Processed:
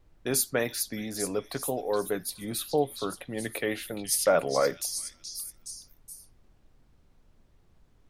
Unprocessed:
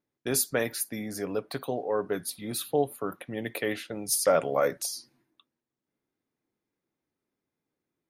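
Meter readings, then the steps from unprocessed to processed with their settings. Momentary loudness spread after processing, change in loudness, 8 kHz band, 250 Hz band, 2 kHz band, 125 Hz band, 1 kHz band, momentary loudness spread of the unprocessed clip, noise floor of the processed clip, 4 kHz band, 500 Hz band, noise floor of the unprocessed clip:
17 LU, 0.0 dB, +1.5 dB, 0.0 dB, +0.5 dB, 0.0 dB, 0.0 dB, 11 LU, -63 dBFS, +2.0 dB, 0.0 dB, under -85 dBFS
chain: added noise brown -59 dBFS; repeats whose band climbs or falls 422 ms, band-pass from 4.5 kHz, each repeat 0.7 oct, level -3 dB; wow and flutter 45 cents

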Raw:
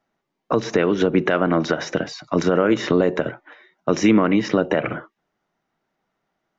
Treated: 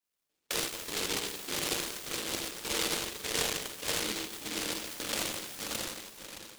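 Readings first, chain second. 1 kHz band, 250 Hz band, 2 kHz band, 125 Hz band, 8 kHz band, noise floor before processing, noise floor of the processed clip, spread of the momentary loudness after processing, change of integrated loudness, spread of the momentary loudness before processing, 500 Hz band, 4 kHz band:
-14.5 dB, -22.5 dB, -9.5 dB, -21.0 dB, no reading, -78 dBFS, -83 dBFS, 5 LU, -13.0 dB, 10 LU, -20.0 dB, +1.5 dB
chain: backward echo that repeats 103 ms, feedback 81%, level -3 dB; compression 12:1, threshold -25 dBFS, peak gain reduction 18 dB; LFO band-pass square 1.7 Hz 540–2900 Hz; gated-style reverb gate 370 ms falling, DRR -4.5 dB; delay time shaken by noise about 3.2 kHz, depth 0.48 ms; trim -4 dB

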